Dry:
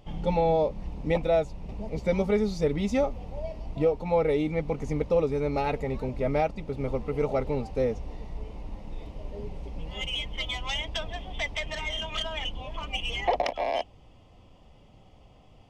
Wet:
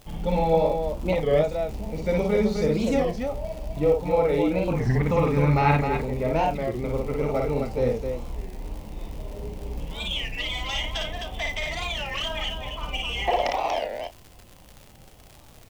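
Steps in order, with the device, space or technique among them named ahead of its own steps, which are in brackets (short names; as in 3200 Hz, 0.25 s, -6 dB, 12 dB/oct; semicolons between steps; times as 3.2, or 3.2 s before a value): 4.73–5.77 graphic EQ 125/250/500/1000/2000 Hz +10/+4/-6/+8/+8 dB; loudspeakers at several distances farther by 19 m -2 dB, 89 m -5 dB; warped LP (record warp 33 1/3 rpm, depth 250 cents; crackle 130/s -35 dBFS; white noise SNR 37 dB); doubler 33 ms -12 dB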